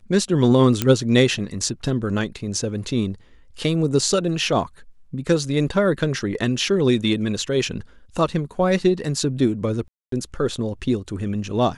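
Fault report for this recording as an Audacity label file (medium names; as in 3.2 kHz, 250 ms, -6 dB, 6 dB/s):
0.820000	0.820000	pop -4 dBFS
9.880000	10.120000	dropout 243 ms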